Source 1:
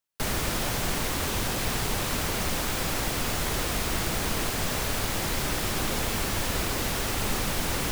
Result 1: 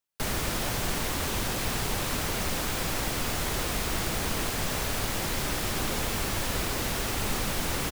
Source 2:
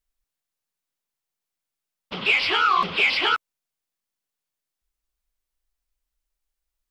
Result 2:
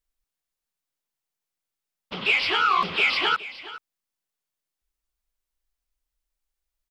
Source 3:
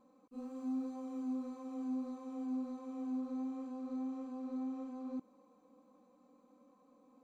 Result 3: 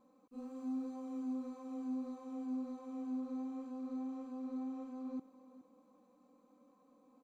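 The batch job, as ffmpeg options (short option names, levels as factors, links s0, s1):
-af "aecho=1:1:418:0.158,volume=0.841"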